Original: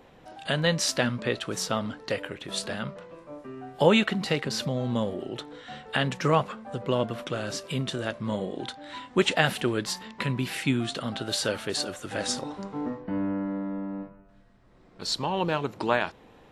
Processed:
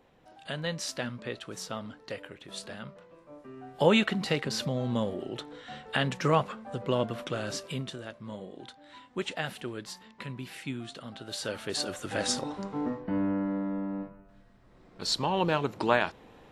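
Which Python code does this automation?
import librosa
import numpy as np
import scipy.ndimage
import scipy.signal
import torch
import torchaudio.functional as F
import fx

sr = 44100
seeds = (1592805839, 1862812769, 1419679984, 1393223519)

y = fx.gain(x, sr, db=fx.line((3.11, -9.0), (3.96, -2.0), (7.61, -2.0), (8.06, -11.0), (11.18, -11.0), (11.95, 0.0)))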